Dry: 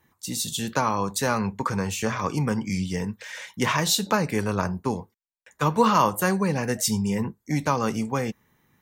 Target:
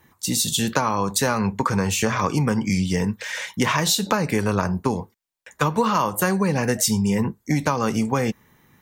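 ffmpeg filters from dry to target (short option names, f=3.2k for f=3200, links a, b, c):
-af "acompressor=threshold=-25dB:ratio=6,volume=8dB"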